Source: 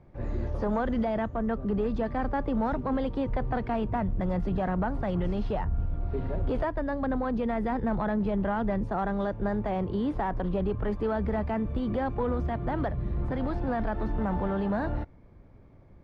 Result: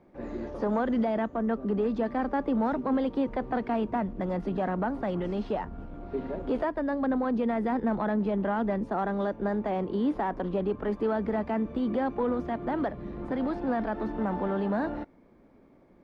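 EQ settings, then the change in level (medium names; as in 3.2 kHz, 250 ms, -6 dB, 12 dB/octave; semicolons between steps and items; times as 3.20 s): resonant low shelf 160 Hz -13 dB, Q 1.5; 0.0 dB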